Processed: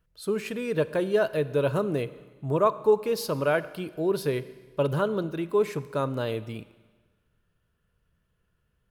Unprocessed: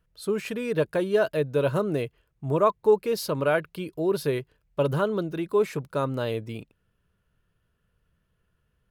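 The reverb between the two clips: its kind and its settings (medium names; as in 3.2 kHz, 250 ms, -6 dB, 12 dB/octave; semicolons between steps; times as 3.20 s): Schroeder reverb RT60 1.4 s, combs from 32 ms, DRR 15.5 dB; trim -1 dB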